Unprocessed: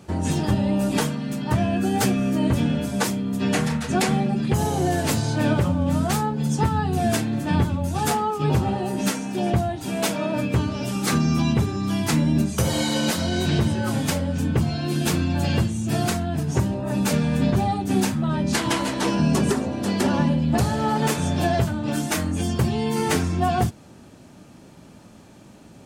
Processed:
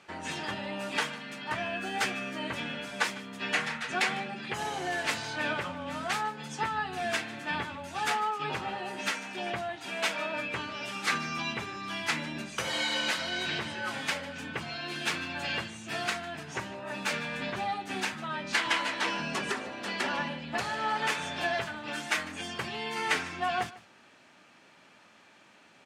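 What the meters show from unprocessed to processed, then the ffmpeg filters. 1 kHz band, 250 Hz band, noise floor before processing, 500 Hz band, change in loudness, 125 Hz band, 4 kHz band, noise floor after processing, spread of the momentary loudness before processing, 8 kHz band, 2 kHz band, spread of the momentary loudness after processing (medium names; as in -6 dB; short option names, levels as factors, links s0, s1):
-6.0 dB, -18.5 dB, -47 dBFS, -11.0 dB, -9.5 dB, -23.0 dB, -2.5 dB, -58 dBFS, 3 LU, -10.5 dB, +1.0 dB, 7 LU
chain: -filter_complex "[0:a]bandpass=f=2100:t=q:w=1.2:csg=0,asplit=2[s0][s1];[s1]aecho=0:1:151:0.119[s2];[s0][s2]amix=inputs=2:normalize=0,volume=1.26"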